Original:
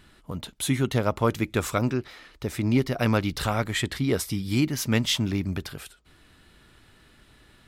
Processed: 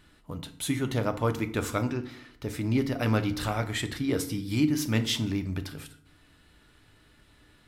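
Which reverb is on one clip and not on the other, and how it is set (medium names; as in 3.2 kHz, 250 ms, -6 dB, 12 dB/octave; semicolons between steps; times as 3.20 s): FDN reverb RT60 0.6 s, low-frequency decay 1.45×, high-frequency decay 0.7×, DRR 7.5 dB; trim -4.5 dB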